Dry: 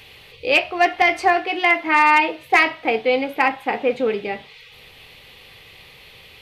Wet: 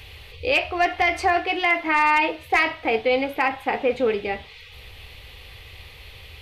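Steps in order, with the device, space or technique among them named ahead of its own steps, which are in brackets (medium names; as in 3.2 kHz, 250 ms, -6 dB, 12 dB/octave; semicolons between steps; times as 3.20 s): car stereo with a boomy subwoofer (resonant low shelf 110 Hz +12 dB, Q 1.5; peak limiter -11 dBFS, peak gain reduction 5 dB)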